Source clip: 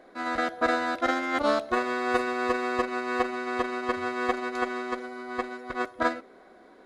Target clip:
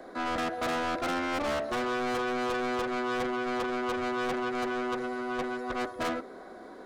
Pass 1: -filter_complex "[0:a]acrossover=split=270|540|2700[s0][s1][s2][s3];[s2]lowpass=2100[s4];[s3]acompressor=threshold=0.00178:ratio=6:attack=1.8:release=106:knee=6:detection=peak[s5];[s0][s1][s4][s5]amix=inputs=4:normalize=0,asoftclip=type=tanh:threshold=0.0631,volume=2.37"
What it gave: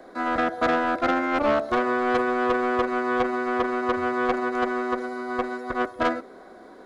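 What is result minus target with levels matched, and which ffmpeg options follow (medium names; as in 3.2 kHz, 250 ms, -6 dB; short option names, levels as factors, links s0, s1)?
saturation: distortion -7 dB
-filter_complex "[0:a]acrossover=split=270|540|2700[s0][s1][s2][s3];[s2]lowpass=2100[s4];[s3]acompressor=threshold=0.00178:ratio=6:attack=1.8:release=106:knee=6:detection=peak[s5];[s0][s1][s4][s5]amix=inputs=4:normalize=0,asoftclip=type=tanh:threshold=0.0158,volume=2.37"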